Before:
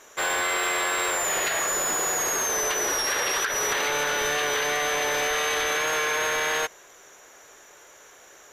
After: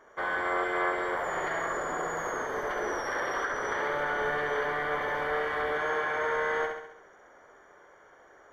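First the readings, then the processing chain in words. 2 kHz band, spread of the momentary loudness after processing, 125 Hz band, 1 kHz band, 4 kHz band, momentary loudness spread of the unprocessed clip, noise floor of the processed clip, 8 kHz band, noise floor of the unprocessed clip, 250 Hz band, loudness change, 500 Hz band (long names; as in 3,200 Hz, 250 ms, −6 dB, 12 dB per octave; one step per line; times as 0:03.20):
−5.0 dB, 4 LU, −1.5 dB, −2.5 dB, −17.0 dB, 1 LU, −57 dBFS, −24.0 dB, −51 dBFS, −1.0 dB, −6.5 dB, −2.0 dB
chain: Savitzky-Golay smoothing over 41 samples
flutter between parallel walls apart 11.5 metres, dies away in 0.76 s
level −3.5 dB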